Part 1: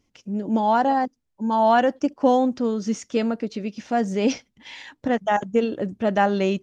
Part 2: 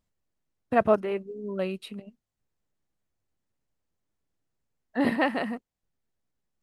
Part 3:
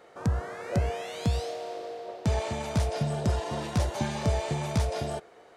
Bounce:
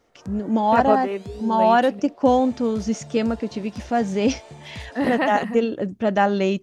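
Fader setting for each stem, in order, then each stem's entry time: +1.0, +2.0, −11.5 decibels; 0.00, 0.00, 0.00 seconds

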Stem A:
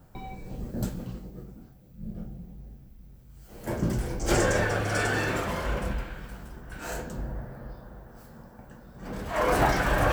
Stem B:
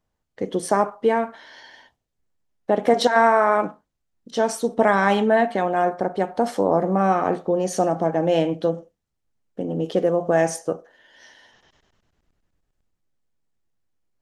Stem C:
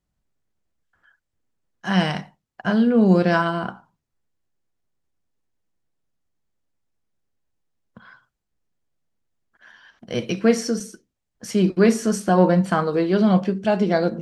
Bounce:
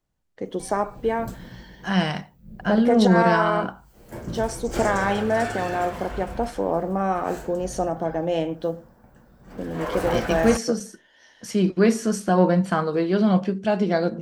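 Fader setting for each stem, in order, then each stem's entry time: −5.0, −4.5, −2.0 decibels; 0.45, 0.00, 0.00 seconds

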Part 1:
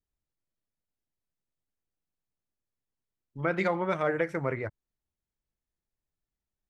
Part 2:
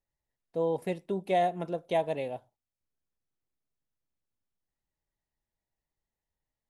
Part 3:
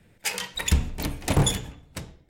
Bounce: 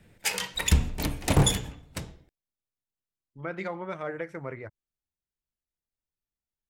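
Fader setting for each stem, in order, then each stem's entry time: −6.5 dB, muted, 0.0 dB; 0.00 s, muted, 0.00 s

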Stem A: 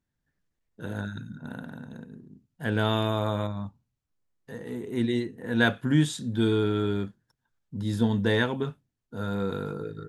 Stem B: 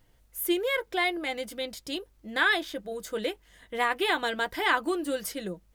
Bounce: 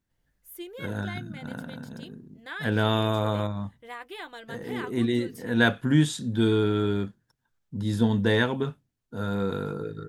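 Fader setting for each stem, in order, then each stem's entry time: +1.5, −13.5 decibels; 0.00, 0.10 seconds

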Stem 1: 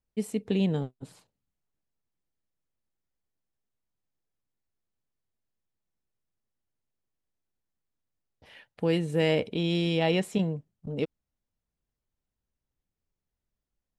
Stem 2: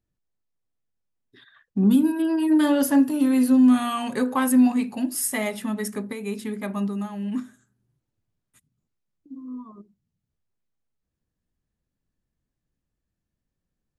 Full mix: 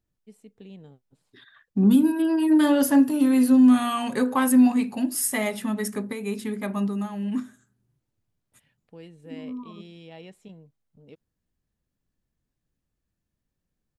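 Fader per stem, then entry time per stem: −19.0, +0.5 decibels; 0.10, 0.00 seconds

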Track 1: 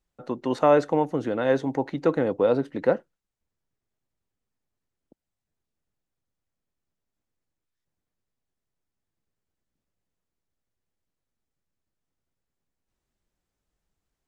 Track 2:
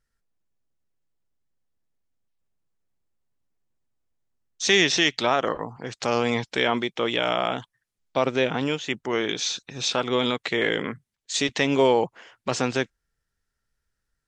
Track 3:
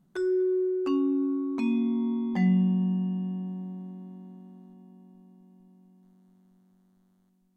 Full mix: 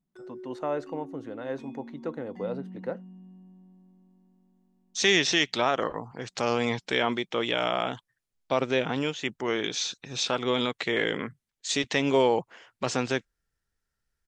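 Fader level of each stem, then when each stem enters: −12.0, −3.0, −17.5 decibels; 0.00, 0.35, 0.00 seconds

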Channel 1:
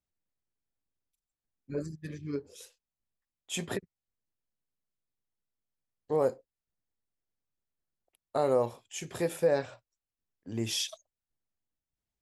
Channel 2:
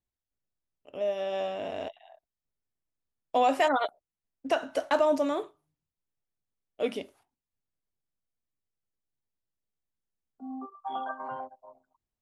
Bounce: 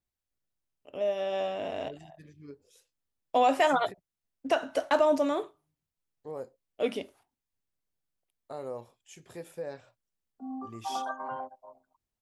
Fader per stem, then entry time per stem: −12.0, +0.5 decibels; 0.15, 0.00 seconds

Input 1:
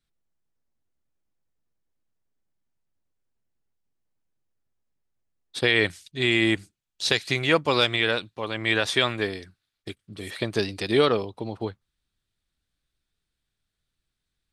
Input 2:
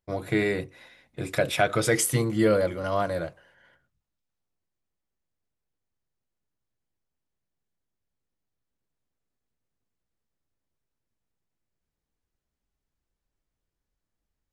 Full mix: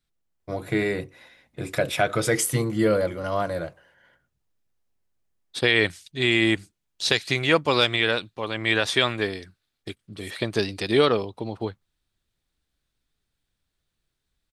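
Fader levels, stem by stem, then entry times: +1.0, +0.5 decibels; 0.00, 0.40 seconds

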